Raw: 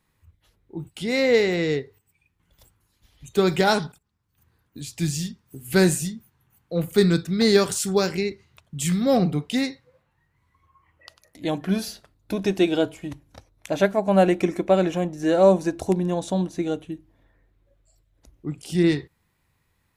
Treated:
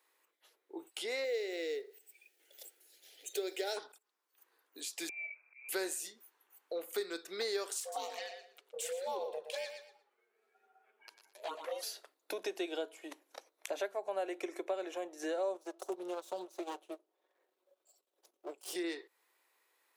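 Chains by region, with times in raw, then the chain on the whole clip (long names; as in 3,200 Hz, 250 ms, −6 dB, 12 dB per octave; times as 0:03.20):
0:01.24–0:03.77: mu-law and A-law mismatch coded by mu + phaser with its sweep stopped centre 440 Hz, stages 4
0:05.09–0:05.69: downward compressor 2 to 1, threshold −43 dBFS + volume swells 131 ms + voice inversion scrambler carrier 2,500 Hz
0:07.80–0:11.83: ring modulation 320 Hz + flanger swept by the level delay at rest 9.4 ms, full sweep at −20.5 dBFS + repeating echo 118 ms, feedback 20%, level −11 dB
0:15.54–0:18.76: lower of the sound and its delayed copy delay 5.4 ms + parametric band 1,900 Hz −8 dB 0.72 octaves + transient designer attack −2 dB, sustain −10 dB
whole clip: Butterworth high-pass 370 Hz 36 dB per octave; high-shelf EQ 9,800 Hz +3.5 dB; downward compressor 3 to 1, threshold −37 dBFS; level −2 dB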